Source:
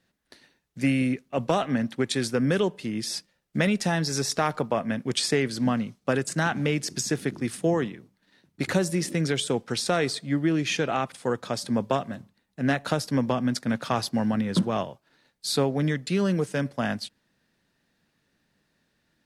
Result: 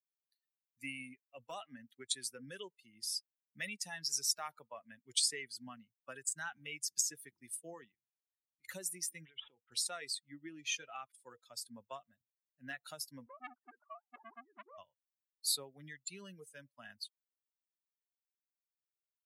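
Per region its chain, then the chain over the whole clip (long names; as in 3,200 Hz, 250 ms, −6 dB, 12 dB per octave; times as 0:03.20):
0:07.94–0:08.65: spectral tilt −1.5 dB per octave + downward compressor 3 to 1, threshold −45 dBFS
0:09.25–0:09.72: bad sample-rate conversion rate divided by 6×, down none, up filtered + downward compressor 16 to 1, threshold −28 dBFS
0:13.26–0:14.78: three sine waves on the formant tracks + low-pass filter 1,400 Hz 24 dB per octave + saturating transformer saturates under 1,300 Hz
whole clip: spectral dynamics exaggerated over time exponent 2; first-order pre-emphasis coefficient 0.97; notch filter 480 Hz, Q 15; level +2 dB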